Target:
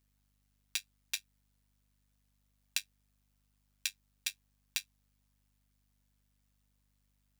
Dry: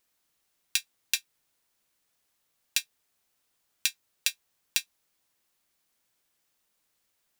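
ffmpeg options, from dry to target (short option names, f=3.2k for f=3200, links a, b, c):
-af "volume=7dB,asoftclip=hard,volume=-7dB,tremolo=f=100:d=0.75,aeval=exprs='val(0)+0.000282*(sin(2*PI*50*n/s)+sin(2*PI*2*50*n/s)/2+sin(2*PI*3*50*n/s)/3+sin(2*PI*4*50*n/s)/4+sin(2*PI*5*50*n/s)/5)':c=same,volume=-4dB"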